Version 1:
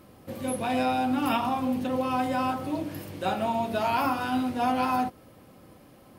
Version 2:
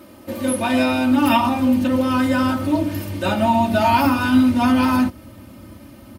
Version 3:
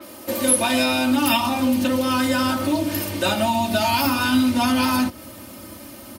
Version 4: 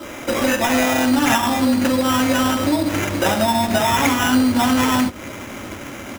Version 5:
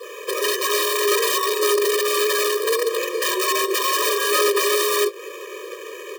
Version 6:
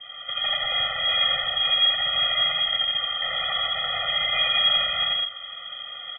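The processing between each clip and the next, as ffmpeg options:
-af "highpass=100,asubboost=boost=6.5:cutoff=160,aecho=1:1:3.3:0.84,volume=2.37"
-filter_complex "[0:a]bass=f=250:g=-10,treble=f=4000:g=8,acrossover=split=200|3000[s0][s1][s2];[s1]acompressor=threshold=0.0562:ratio=6[s3];[s0][s3][s2]amix=inputs=3:normalize=0,adynamicequalizer=threshold=0.00794:dfrequency=5000:dqfactor=0.7:tfrequency=5000:tqfactor=0.7:attack=5:release=100:ratio=0.375:range=3:mode=cutabove:tftype=highshelf,volume=1.78"
-filter_complex "[0:a]asplit=2[s0][s1];[s1]acompressor=threshold=0.0447:ratio=6,volume=1.12[s2];[s0][s2]amix=inputs=2:normalize=0,aexciter=amount=1:drive=7.1:freq=6900,acrusher=samples=10:mix=1:aa=0.000001"
-af "afreqshift=160,aeval=exprs='(mod(3.76*val(0)+1,2)-1)/3.76':c=same,afftfilt=real='re*eq(mod(floor(b*sr/1024/320),2),1)':imag='im*eq(mod(floor(b*sr/1024/320),2),1)':win_size=1024:overlap=0.75"
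-filter_complex "[0:a]asplit=2[s0][s1];[s1]aecho=0:1:84.55|160.3|201.2:0.891|0.562|0.501[s2];[s0][s2]amix=inputs=2:normalize=0,lowpass=f=3100:t=q:w=0.5098,lowpass=f=3100:t=q:w=0.6013,lowpass=f=3100:t=q:w=0.9,lowpass=f=3100:t=q:w=2.563,afreqshift=-3700,asuperstop=centerf=2700:order=12:qfactor=5.5,volume=0.531"

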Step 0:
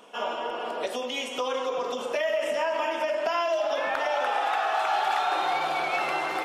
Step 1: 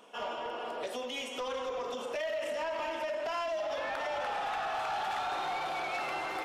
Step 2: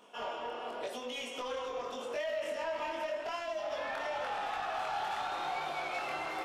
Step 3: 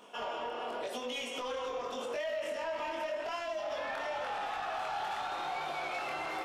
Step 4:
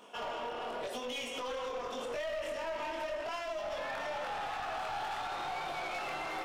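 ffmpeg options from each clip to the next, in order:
-af "asoftclip=type=tanh:threshold=0.0596,volume=0.562"
-af "flanger=delay=20:depth=5.5:speed=0.88,volume=1.12"
-af "alimiter=level_in=3.16:limit=0.0631:level=0:latency=1:release=105,volume=0.316,volume=1.58"
-af "aeval=exprs='clip(val(0),-1,0.015)':c=same"

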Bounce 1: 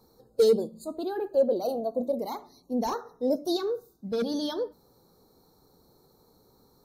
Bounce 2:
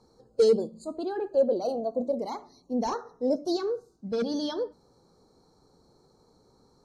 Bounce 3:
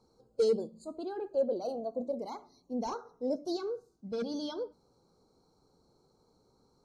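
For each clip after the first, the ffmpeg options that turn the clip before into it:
-af "lowpass=f=8300:w=0.5412,lowpass=f=8300:w=1.3066,bandreject=f=3700:w=9"
-af "asuperstop=centerf=1800:order=12:qfactor=6.2,volume=0.473"

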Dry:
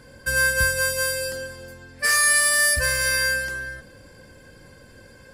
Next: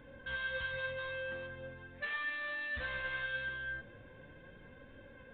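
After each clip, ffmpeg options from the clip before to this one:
-af "alimiter=limit=0.178:level=0:latency=1,aresample=8000,asoftclip=type=tanh:threshold=0.0316,aresample=44100,flanger=delay=3.5:depth=5.4:regen=57:speed=0.4:shape=sinusoidal,volume=0.75"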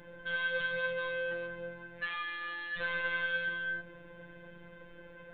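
-af "afftfilt=real='hypot(re,im)*cos(PI*b)':imag='0':win_size=1024:overlap=0.75,volume=2.11"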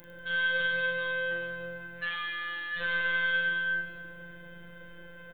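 -filter_complex "[0:a]aemphasis=mode=production:type=50fm,asplit=2[s0][s1];[s1]aecho=0:1:40|100|190|325|527.5:0.631|0.398|0.251|0.158|0.1[s2];[s0][s2]amix=inputs=2:normalize=0"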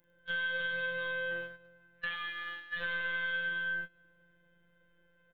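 -af "agate=range=0.0631:threshold=0.02:ratio=16:detection=peak,acompressor=threshold=0.01:ratio=2.5,volume=1.5"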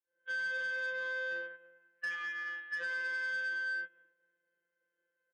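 -af "agate=range=0.0224:threshold=0.00141:ratio=3:detection=peak,highpass=f=280:w=0.5412,highpass=f=280:w=1.3066,equalizer=f=430:t=q:w=4:g=9,equalizer=f=680:t=q:w=4:g=-4,equalizer=f=1700:t=q:w=4:g=6,lowpass=f=3000:w=0.5412,lowpass=f=3000:w=1.3066,asoftclip=type=tanh:threshold=0.0355,volume=0.75"

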